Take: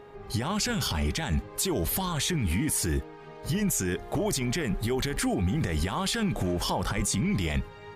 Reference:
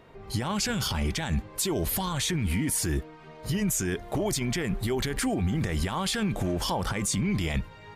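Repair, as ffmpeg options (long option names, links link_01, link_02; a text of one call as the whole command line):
ffmpeg -i in.wav -filter_complex "[0:a]bandreject=frequency=410.9:width_type=h:width=4,bandreject=frequency=821.8:width_type=h:width=4,bandreject=frequency=1232.7:width_type=h:width=4,bandreject=frequency=1643.6:width_type=h:width=4,asplit=3[link_01][link_02][link_03];[link_01]afade=type=out:start_time=6.96:duration=0.02[link_04];[link_02]highpass=frequency=140:width=0.5412,highpass=frequency=140:width=1.3066,afade=type=in:start_time=6.96:duration=0.02,afade=type=out:start_time=7.08:duration=0.02[link_05];[link_03]afade=type=in:start_time=7.08:duration=0.02[link_06];[link_04][link_05][link_06]amix=inputs=3:normalize=0" out.wav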